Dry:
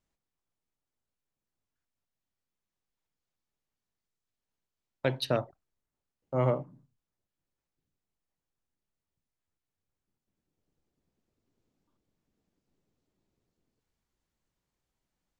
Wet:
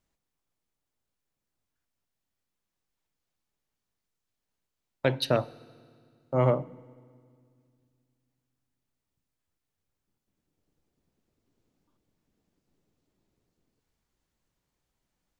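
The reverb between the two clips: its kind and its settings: FDN reverb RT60 2.1 s, low-frequency decay 1.5×, high-frequency decay 0.9×, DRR 20 dB; trim +3.5 dB

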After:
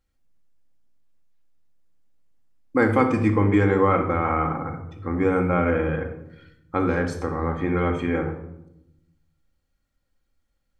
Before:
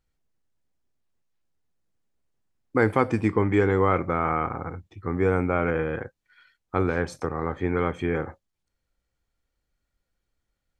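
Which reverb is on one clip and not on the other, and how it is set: simulated room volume 2600 m³, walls furnished, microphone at 2.2 m

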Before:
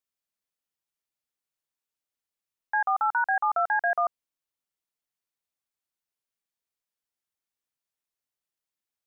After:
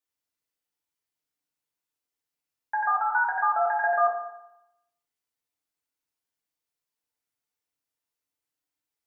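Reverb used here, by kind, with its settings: FDN reverb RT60 0.86 s, low-frequency decay 0.95×, high-frequency decay 0.75×, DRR -3 dB; trim -3 dB

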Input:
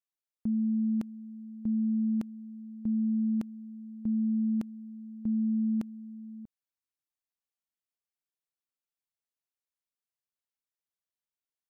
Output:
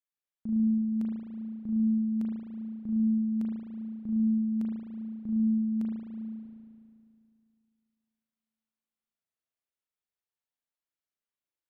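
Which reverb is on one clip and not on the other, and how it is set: spring tank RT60 2.4 s, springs 36 ms, chirp 30 ms, DRR -4.5 dB; trim -6 dB

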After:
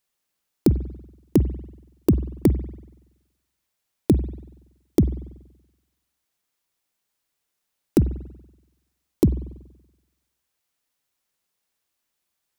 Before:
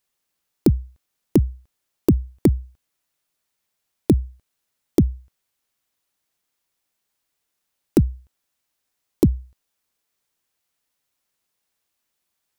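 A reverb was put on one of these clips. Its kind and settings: spring tank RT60 1 s, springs 47 ms, chirp 45 ms, DRR 14 dB; trim -1.5 dB

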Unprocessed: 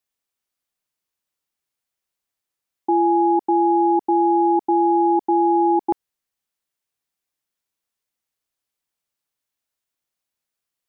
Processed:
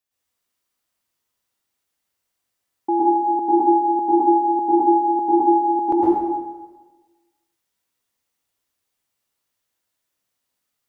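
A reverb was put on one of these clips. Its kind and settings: plate-style reverb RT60 1.3 s, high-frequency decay 0.8×, pre-delay 100 ms, DRR -8 dB; trim -2 dB

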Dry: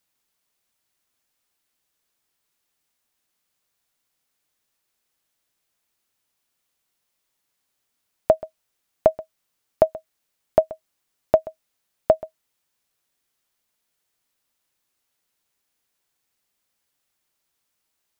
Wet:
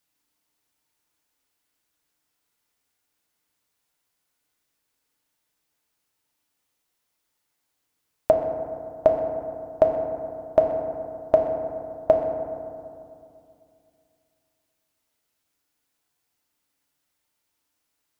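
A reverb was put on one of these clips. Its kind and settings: FDN reverb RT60 2.5 s, low-frequency decay 1.2×, high-frequency decay 0.35×, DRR 1.5 dB; trim -2 dB

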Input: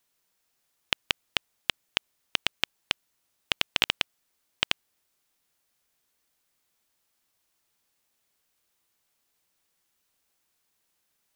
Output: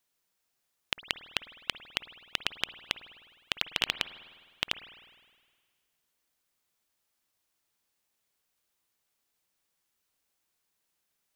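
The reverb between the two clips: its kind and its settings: spring tank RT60 1.7 s, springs 51 ms, chirp 35 ms, DRR 12.5 dB; trim -4.5 dB

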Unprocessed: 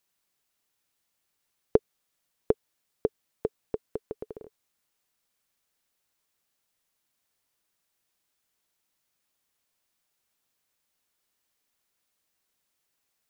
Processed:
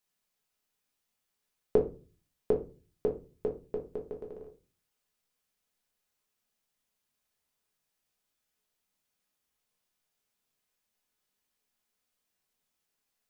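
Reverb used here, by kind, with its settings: simulated room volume 170 m³, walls furnished, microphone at 1.4 m; trim -6.5 dB

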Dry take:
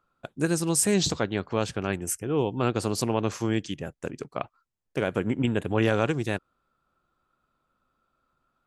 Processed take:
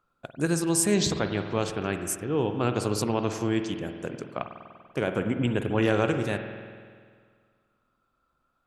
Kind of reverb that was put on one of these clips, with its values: spring tank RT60 1.9 s, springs 48 ms, chirp 70 ms, DRR 6.5 dB; trim -1 dB

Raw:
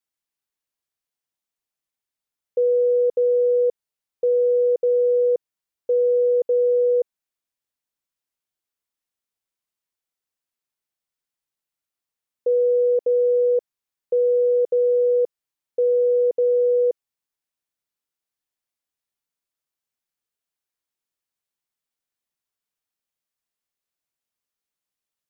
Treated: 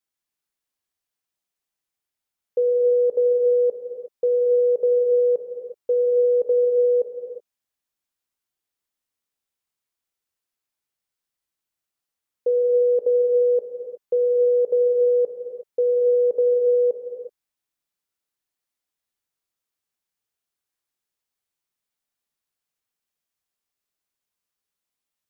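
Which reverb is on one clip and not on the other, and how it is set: gated-style reverb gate 390 ms flat, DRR 3 dB

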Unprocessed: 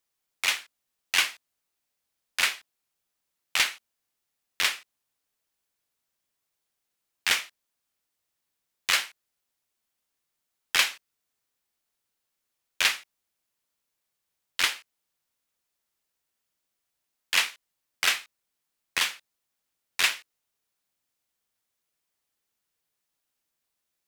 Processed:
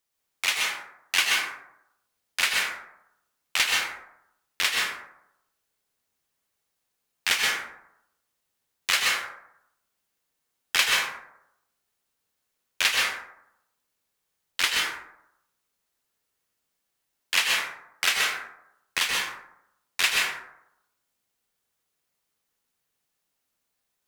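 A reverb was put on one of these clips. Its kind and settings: plate-style reverb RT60 0.79 s, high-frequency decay 0.4×, pre-delay 115 ms, DRR -1.5 dB

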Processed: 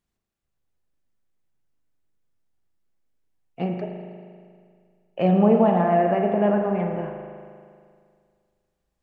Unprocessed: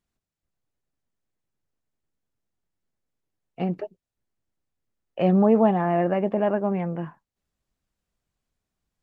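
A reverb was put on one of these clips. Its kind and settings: spring tank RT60 2.1 s, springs 39 ms, chirp 70 ms, DRR 2.5 dB

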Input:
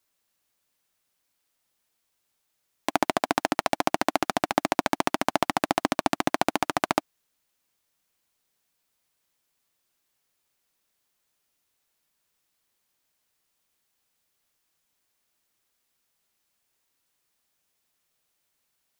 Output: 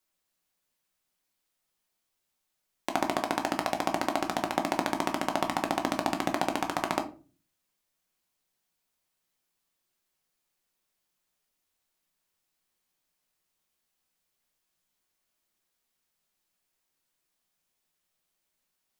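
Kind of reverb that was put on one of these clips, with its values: simulated room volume 200 m³, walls furnished, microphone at 1 m; trim -5.5 dB

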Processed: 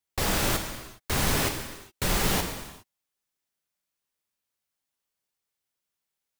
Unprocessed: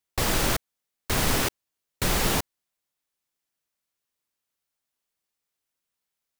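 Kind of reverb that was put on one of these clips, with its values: gated-style reverb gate 440 ms falling, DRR 4 dB; trim -2.5 dB

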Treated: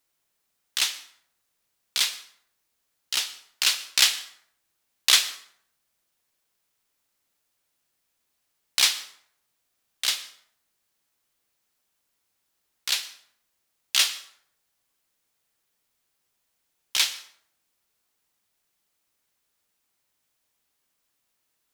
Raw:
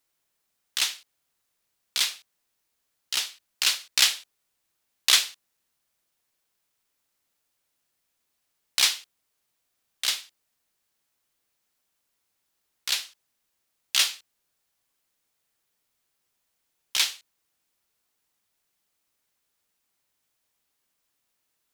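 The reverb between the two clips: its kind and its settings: plate-style reverb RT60 0.66 s, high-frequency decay 0.65×, pre-delay 100 ms, DRR 16.5 dB; trim +1 dB

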